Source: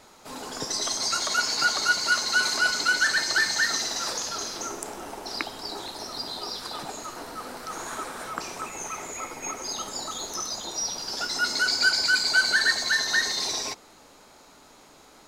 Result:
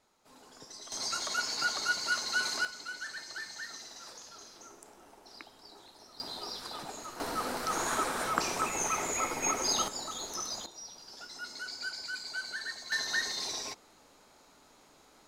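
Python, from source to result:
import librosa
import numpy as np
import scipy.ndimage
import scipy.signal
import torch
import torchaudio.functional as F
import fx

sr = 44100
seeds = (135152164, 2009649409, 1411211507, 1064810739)

y = fx.gain(x, sr, db=fx.steps((0.0, -19.0), (0.92, -8.0), (2.65, -18.5), (6.2, -6.5), (7.2, 3.0), (9.88, -5.5), (10.66, -17.0), (12.92, -8.0)))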